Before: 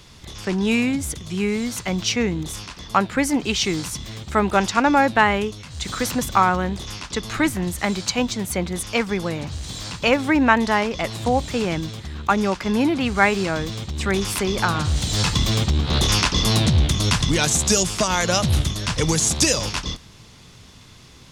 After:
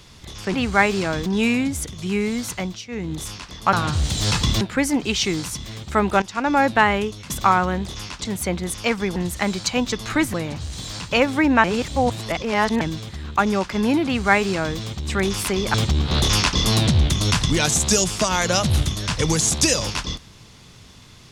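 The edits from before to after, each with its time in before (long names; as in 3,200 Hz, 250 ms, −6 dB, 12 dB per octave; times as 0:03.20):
0:01.82–0:02.44: duck −17 dB, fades 0.29 s
0:04.62–0:05.05: fade in, from −16 dB
0:05.70–0:06.21: remove
0:07.16–0:07.58: swap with 0:08.34–0:09.25
0:10.55–0:11.72: reverse
0:12.97–0:13.69: duplicate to 0:00.54
0:14.65–0:15.53: move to 0:03.01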